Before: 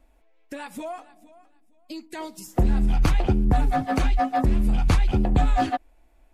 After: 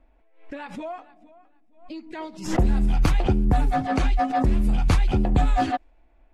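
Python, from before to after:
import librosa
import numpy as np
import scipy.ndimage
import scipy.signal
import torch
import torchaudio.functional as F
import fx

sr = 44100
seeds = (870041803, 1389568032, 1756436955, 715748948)

y = fx.env_lowpass(x, sr, base_hz=2600.0, full_db=-14.5)
y = fx.pre_swell(y, sr, db_per_s=110.0)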